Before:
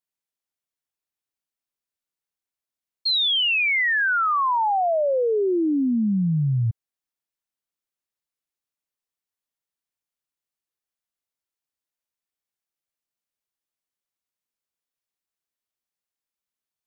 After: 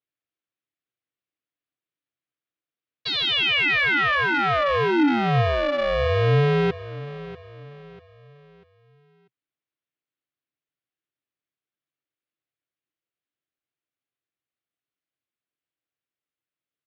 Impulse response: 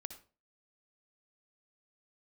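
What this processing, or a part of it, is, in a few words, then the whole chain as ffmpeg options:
ring modulator pedal into a guitar cabinet: -af "aeval=exprs='val(0)*sgn(sin(2*PI*290*n/s))':c=same,highpass=80,equalizer=f=130:t=q:w=4:g=7,equalizer=f=200:t=q:w=4:g=-4,equalizer=f=310:t=q:w=4:g=7,equalizer=f=900:t=q:w=4:g=-8,lowpass=f=3500:w=0.5412,lowpass=f=3500:w=1.3066,aecho=1:1:642|1284|1926|2568:0.158|0.0634|0.0254|0.0101,volume=1.12"

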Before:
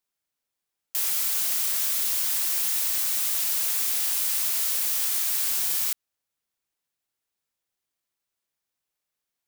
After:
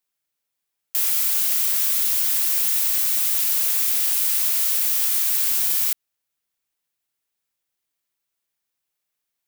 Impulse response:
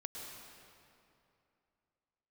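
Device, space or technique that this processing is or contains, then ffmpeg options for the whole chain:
presence and air boost: -af "equalizer=f=2500:t=o:w=1.5:g=2.5,highshelf=f=9600:g=6"

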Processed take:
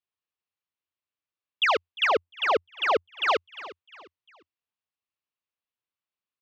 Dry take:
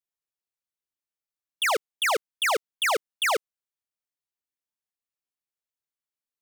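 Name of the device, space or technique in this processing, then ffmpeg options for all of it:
frequency-shifting delay pedal into a guitar cabinet: -filter_complex "[0:a]asplit=4[s0][s1][s2][s3];[s1]adelay=352,afreqshift=-38,volume=0.126[s4];[s2]adelay=704,afreqshift=-76,volume=0.0452[s5];[s3]adelay=1056,afreqshift=-114,volume=0.0164[s6];[s0][s4][s5][s6]amix=inputs=4:normalize=0,highpass=78,equalizer=f=87:t=q:w=4:g=10,equalizer=f=1100:t=q:w=4:g=5,equalizer=f=2700:t=q:w=4:g=5,lowpass=f=4500:w=0.5412,lowpass=f=4500:w=1.3066,asettb=1/sr,asplit=3[s7][s8][s9];[s7]atrim=end=2.074[s10];[s8]atrim=start=2.07:end=3.28,asetpts=PTS-STARTPTS,afade=t=in:d=0.004:c=qsin,afade=t=out:st=1.206:d=0.004:c=qsin,tiltshelf=f=930:g=5.5[s11];[s9]atrim=start=3.276[s12];[s10][s11]acrossfade=d=0.004:c1=hsin:c2=qsin[s13];[s13][s12]acrossfade=d=0.004:c1=qsin:c2=hsin"

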